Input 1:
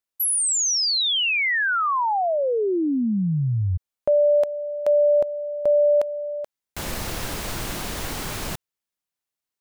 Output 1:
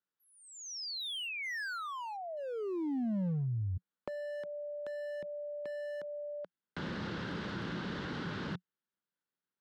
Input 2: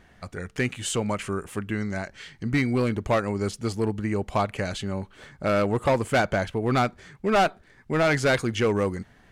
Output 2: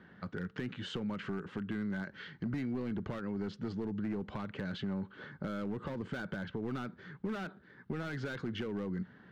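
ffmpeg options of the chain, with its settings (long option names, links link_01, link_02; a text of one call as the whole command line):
ffmpeg -i in.wav -filter_complex "[0:a]highpass=150,equalizer=frequency=180:width_type=q:width=4:gain=6,equalizer=frequency=690:width_type=q:width=4:gain=-9,equalizer=frequency=1500:width_type=q:width=4:gain=7,equalizer=frequency=2400:width_type=q:width=4:gain=-7,lowpass=frequency=4000:width=0.5412,lowpass=frequency=4000:width=1.3066,alimiter=limit=-16.5dB:level=0:latency=1:release=328,volume=23dB,asoftclip=hard,volume=-23dB,acompressor=threshold=-35dB:ratio=5:attack=7.1:release=65:knee=6:detection=peak,tiltshelf=frequency=970:gain=3.5,acrossover=split=350|1700[link_01][link_02][link_03];[link_02]acompressor=threshold=-42dB:ratio=2.5:attack=9.3:release=745:knee=2.83:detection=peak[link_04];[link_01][link_04][link_03]amix=inputs=3:normalize=0,volume=-2dB" out.wav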